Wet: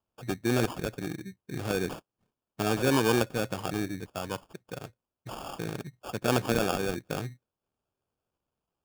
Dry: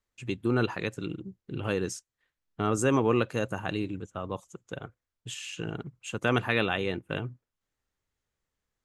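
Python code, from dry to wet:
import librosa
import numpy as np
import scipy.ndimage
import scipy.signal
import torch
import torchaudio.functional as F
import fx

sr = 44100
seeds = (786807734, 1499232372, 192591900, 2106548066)

y = scipy.signal.sosfilt(scipy.signal.butter(2, 86.0, 'highpass', fs=sr, output='sos'), x)
y = fx.sample_hold(y, sr, seeds[0], rate_hz=2000.0, jitter_pct=0)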